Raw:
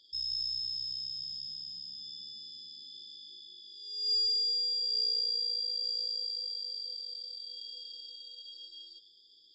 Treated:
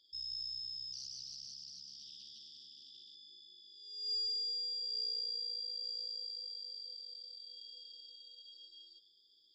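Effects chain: 0.93–3.15 Doppler distortion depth 0.41 ms; gain -7.5 dB

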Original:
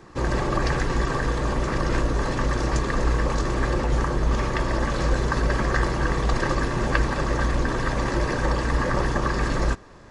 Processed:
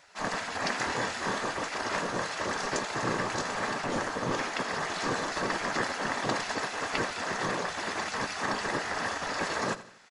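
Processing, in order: spectral gate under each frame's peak -15 dB weak; 0.78–1.44 doubler 25 ms -6 dB; feedback echo 84 ms, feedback 43%, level -15.5 dB

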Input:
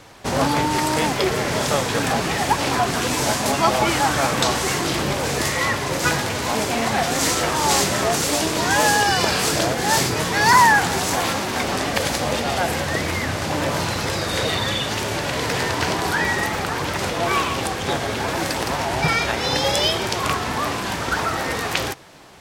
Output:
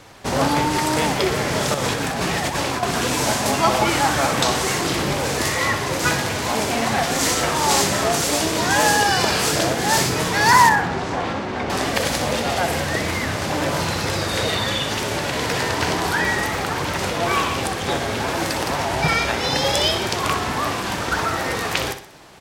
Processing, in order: 1.74–2.83 negative-ratio compressor -24 dBFS, ratio -1; 10.69–11.7 tape spacing loss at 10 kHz 25 dB; feedback echo 62 ms, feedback 40%, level -10 dB

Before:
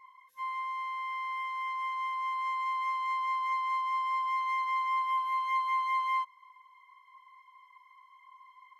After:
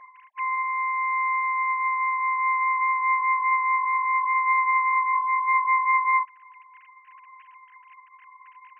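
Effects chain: sine-wave speech; bell 670 Hz +9 dB 0.85 oct; gain +6.5 dB

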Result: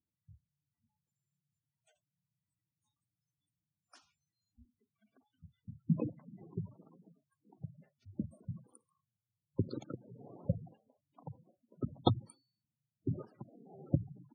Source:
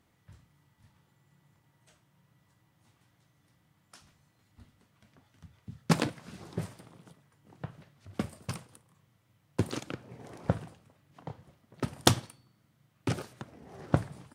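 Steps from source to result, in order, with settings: spectral noise reduction 18 dB; spectral gate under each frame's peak -10 dB strong; gain -3.5 dB

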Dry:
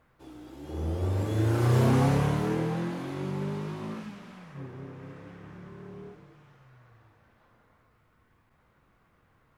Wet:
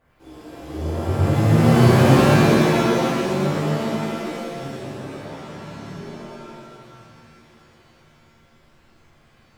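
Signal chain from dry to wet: bell 1200 Hz -2.5 dB; shimmer reverb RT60 1.8 s, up +7 st, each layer -2 dB, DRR -8.5 dB; gain -1.5 dB

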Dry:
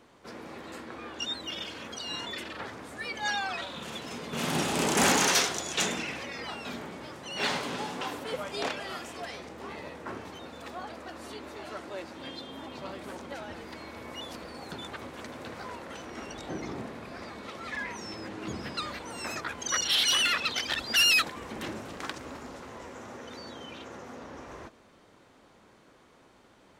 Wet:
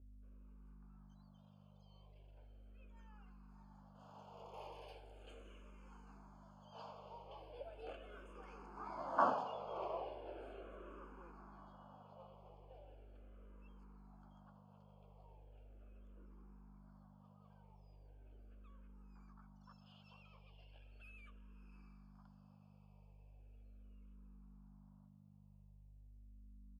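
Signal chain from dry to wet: Doppler pass-by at 9.26, 30 m/s, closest 2.2 m; HPF 570 Hz 12 dB/oct; hum 50 Hz, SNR 12 dB; running mean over 23 samples; doubler 15 ms -12 dB; diffused feedback echo 0.635 s, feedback 49%, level -10.5 dB; endless phaser -0.38 Hz; gain +18 dB

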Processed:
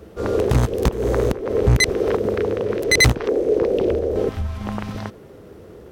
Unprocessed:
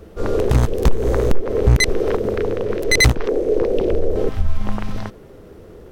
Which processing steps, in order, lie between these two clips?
HPF 66 Hz

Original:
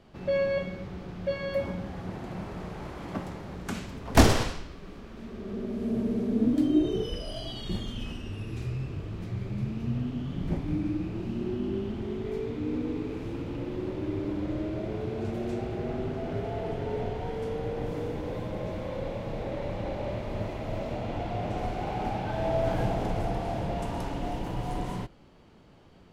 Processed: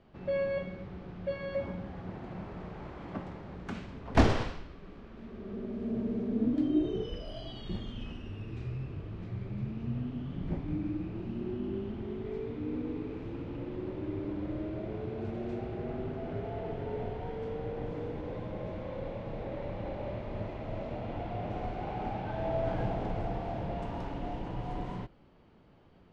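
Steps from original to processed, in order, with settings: Bessel low-pass 3000 Hz, order 2; gain -4.5 dB

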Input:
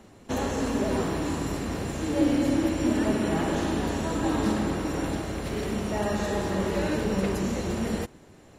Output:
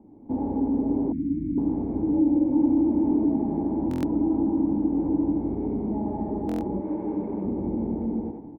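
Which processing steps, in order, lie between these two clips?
AGC gain up to 8.5 dB; loudspeakers at several distances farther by 52 m -3 dB, 86 m -3 dB; 2.46–3.23 overloaded stage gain 14.5 dB; 6.8–7.45 tilt +3 dB/oct; thinning echo 82 ms, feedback 32%, high-pass 420 Hz, level -6 dB; compressor 6:1, threshold -24 dBFS, peak gain reduction 13.5 dB; vocal tract filter u; bell 360 Hz -3.5 dB 0.25 oct; 1.12–1.58 elliptic band-stop 280–2000 Hz, stop band 40 dB; stuck buffer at 3.89/6.47, samples 1024, times 5; gain +9 dB

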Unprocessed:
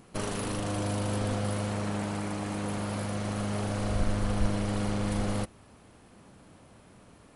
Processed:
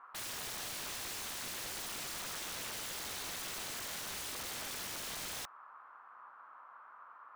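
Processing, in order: Butterworth band-pass 1200 Hz, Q 2.5; wrapped overs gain 49.5 dB; gain +12 dB

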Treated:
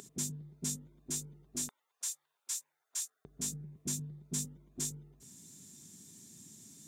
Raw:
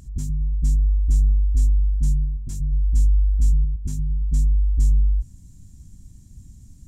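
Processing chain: HPF 180 Hz 24 dB/oct, from 1.69 s 880 Hz, from 3.25 s 170 Hz; tilt shelf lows -6 dB, about 670 Hz; small resonant body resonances 410/3600 Hz, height 12 dB, ringing for 45 ms; gain +1 dB

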